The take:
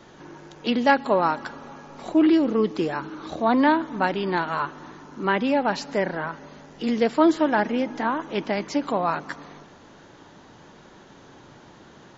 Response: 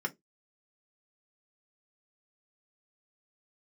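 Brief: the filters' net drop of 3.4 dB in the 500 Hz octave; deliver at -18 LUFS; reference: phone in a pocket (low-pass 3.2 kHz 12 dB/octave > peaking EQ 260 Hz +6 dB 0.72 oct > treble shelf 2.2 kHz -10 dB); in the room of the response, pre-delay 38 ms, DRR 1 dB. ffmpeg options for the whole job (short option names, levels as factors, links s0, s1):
-filter_complex "[0:a]equalizer=f=500:t=o:g=-5.5,asplit=2[s0][s1];[1:a]atrim=start_sample=2205,adelay=38[s2];[s1][s2]afir=irnorm=-1:irlink=0,volume=0.562[s3];[s0][s3]amix=inputs=2:normalize=0,lowpass=3200,equalizer=f=260:t=o:w=0.72:g=6,highshelf=f=2200:g=-10,volume=1.12"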